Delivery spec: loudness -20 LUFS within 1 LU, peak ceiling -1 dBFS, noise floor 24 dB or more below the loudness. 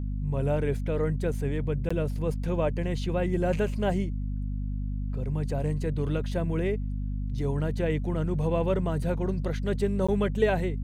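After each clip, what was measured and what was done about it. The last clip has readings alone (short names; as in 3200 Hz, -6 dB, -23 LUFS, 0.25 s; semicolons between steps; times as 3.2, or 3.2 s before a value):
dropouts 2; longest dropout 15 ms; hum 50 Hz; harmonics up to 250 Hz; hum level -28 dBFS; loudness -29.0 LUFS; peak -11.5 dBFS; loudness target -20.0 LUFS
-> interpolate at 1.89/10.07, 15 ms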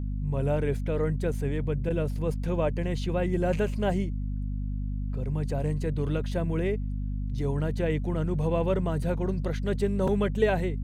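dropouts 0; hum 50 Hz; harmonics up to 250 Hz; hum level -28 dBFS
-> notches 50/100/150/200/250 Hz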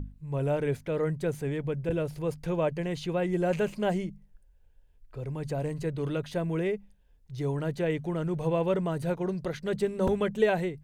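hum none; loudness -30.5 LUFS; peak -12.5 dBFS; loudness target -20.0 LUFS
-> gain +10.5 dB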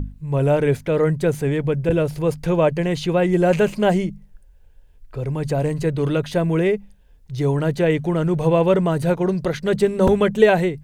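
loudness -20.0 LUFS; peak -2.0 dBFS; noise floor -49 dBFS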